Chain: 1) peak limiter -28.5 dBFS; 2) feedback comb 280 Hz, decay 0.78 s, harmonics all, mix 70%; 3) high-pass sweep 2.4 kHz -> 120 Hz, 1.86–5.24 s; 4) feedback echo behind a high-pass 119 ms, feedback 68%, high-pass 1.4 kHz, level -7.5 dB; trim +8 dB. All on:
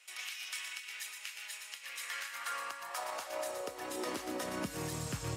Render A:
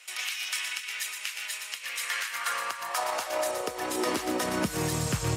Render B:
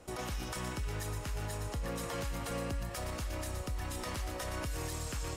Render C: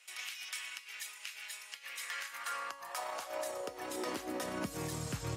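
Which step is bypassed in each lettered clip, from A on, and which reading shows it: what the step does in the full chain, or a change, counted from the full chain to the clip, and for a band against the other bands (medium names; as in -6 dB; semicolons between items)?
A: 2, loudness change +9.5 LU; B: 3, 125 Hz band +8.5 dB; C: 4, momentary loudness spread change +1 LU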